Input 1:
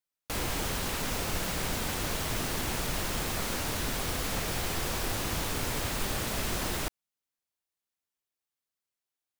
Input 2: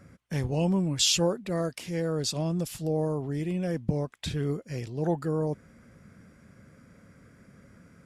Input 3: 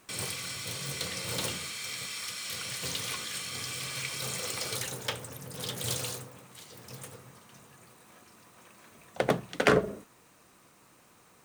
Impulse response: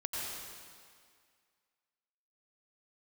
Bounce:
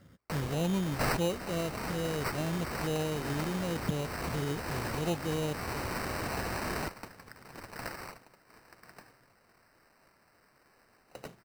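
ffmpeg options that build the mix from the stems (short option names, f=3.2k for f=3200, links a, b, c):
-filter_complex "[0:a]highpass=57,acrusher=bits=2:mode=log:mix=0:aa=0.000001,volume=-3dB[a];[1:a]volume=-5dB,asplit=2[b][c];[2:a]aemphasis=mode=production:type=75kf,adelay=1950,volume=-19.5dB[d];[c]apad=whole_len=414531[e];[a][e]sidechaincompress=threshold=-35dB:ratio=8:attack=16:release=390[f];[f][b][d]amix=inputs=3:normalize=0,acrusher=samples=13:mix=1:aa=0.000001"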